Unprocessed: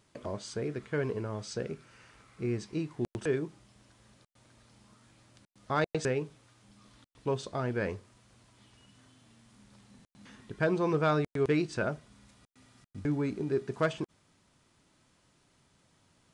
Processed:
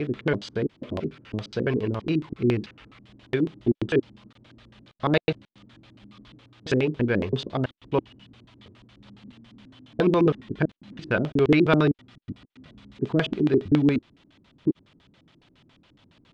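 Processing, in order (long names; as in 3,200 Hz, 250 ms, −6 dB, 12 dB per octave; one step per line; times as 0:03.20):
slices reordered back to front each 333 ms, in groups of 3
auto-filter low-pass square 7.2 Hz 300–3,300 Hz
level +7.5 dB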